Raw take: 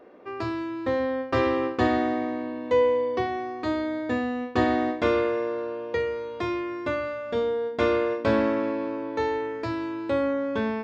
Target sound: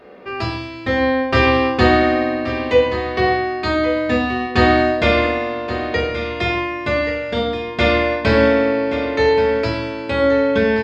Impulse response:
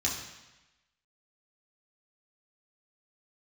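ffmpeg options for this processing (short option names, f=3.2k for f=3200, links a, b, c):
-filter_complex "[0:a]aecho=1:1:1127:0.266,asplit=2[a][b];[1:a]atrim=start_sample=2205,afade=t=out:st=0.17:d=0.01,atrim=end_sample=7938,asetrate=30870,aresample=44100[c];[b][c]afir=irnorm=-1:irlink=0,volume=-6.5dB[d];[a][d]amix=inputs=2:normalize=0,volume=6.5dB"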